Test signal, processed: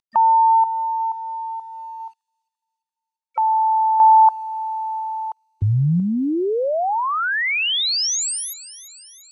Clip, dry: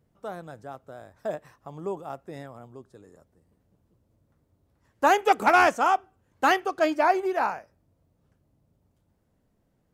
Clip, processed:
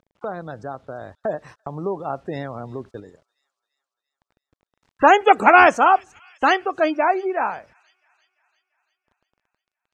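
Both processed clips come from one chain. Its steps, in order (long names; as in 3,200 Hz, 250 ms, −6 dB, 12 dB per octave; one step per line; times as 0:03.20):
noise gate −50 dBFS, range −59 dB
gate on every frequency bin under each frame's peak −30 dB strong
high-shelf EQ 3,600 Hz +7 dB
in parallel at −2.5 dB: upward compression, threshold −20 dBFS
on the sum: bit-depth reduction 10 bits, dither none
sample-and-hold tremolo 1 Hz
high-frequency loss of the air 75 metres
delay with a high-pass on its return 342 ms, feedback 58%, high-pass 4,200 Hz, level −15.5 dB
level +3 dB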